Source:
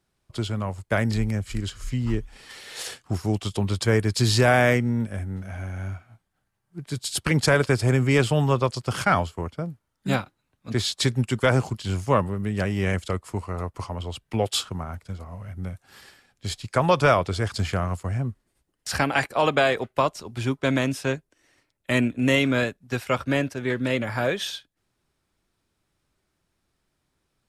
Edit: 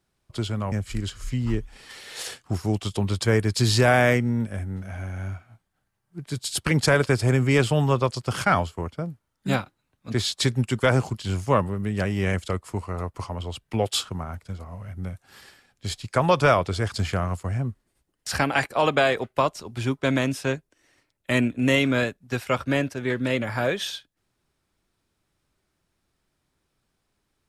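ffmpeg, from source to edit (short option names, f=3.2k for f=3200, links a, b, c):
-filter_complex "[0:a]asplit=2[a][b];[a]atrim=end=0.722[c];[b]atrim=start=1.318[d];[c][d]acrossfade=d=0.004:c1=hsin:c2=hsin"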